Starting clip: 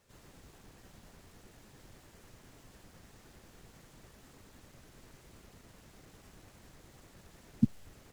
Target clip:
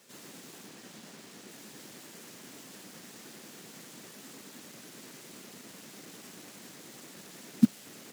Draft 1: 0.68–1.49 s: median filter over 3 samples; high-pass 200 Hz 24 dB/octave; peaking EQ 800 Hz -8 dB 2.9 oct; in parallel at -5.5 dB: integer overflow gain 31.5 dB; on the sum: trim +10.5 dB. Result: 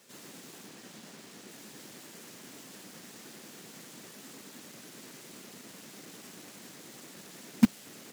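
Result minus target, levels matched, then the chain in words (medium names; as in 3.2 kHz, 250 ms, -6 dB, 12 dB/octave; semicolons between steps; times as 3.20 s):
integer overflow: distortion +5 dB
0.68–1.49 s: median filter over 3 samples; high-pass 200 Hz 24 dB/octave; peaking EQ 800 Hz -8 dB 2.9 oct; in parallel at -5.5 dB: integer overflow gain 43 dB; on the sum: trim +10.5 dB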